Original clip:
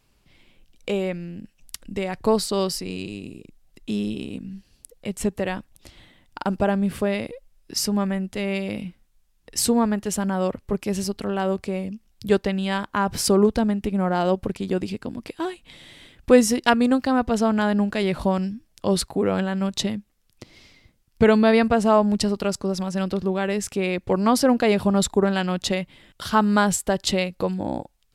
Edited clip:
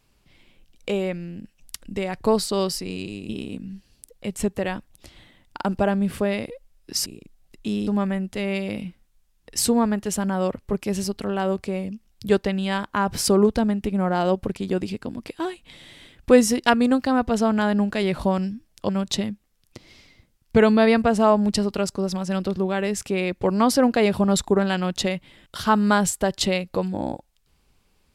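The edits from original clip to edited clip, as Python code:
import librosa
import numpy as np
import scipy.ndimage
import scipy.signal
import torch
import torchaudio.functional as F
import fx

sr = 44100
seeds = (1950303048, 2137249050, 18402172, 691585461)

y = fx.edit(x, sr, fx.move(start_s=3.29, length_s=0.81, to_s=7.87),
    fx.cut(start_s=18.89, length_s=0.66), tone=tone)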